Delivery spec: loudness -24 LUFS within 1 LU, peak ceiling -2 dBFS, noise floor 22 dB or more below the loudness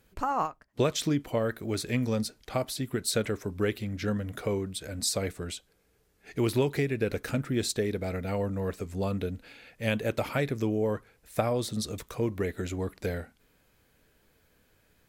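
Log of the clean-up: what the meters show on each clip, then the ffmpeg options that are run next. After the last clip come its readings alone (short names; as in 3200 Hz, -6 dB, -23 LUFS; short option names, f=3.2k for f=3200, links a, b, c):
loudness -31.0 LUFS; peak -13.5 dBFS; loudness target -24.0 LUFS
-> -af "volume=7dB"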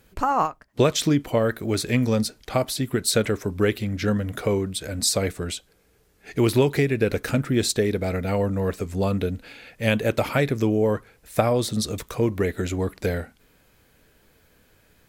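loudness -24.0 LUFS; peak -6.5 dBFS; noise floor -61 dBFS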